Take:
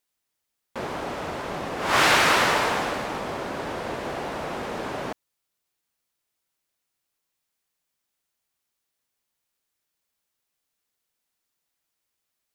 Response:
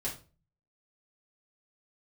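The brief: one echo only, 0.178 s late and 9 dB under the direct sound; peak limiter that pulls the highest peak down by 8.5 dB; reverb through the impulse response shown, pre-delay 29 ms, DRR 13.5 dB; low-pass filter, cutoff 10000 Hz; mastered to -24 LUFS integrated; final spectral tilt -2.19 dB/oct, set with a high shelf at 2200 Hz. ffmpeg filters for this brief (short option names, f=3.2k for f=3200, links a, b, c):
-filter_complex "[0:a]lowpass=10k,highshelf=f=2.2k:g=7.5,alimiter=limit=-12.5dB:level=0:latency=1,aecho=1:1:178:0.355,asplit=2[a][b];[1:a]atrim=start_sample=2205,adelay=29[c];[b][c]afir=irnorm=-1:irlink=0,volume=-16dB[d];[a][d]amix=inputs=2:normalize=0,volume=1dB"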